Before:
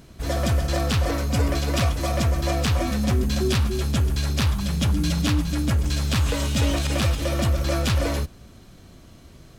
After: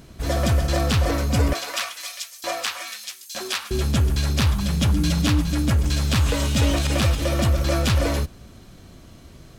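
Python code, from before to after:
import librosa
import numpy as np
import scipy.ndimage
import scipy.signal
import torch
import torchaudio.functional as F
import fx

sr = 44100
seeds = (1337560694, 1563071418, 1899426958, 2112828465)

y = fx.filter_lfo_highpass(x, sr, shape='saw_up', hz=1.1, low_hz=570.0, high_hz=6400.0, q=0.83, at=(1.53, 3.71))
y = y * librosa.db_to_amplitude(2.0)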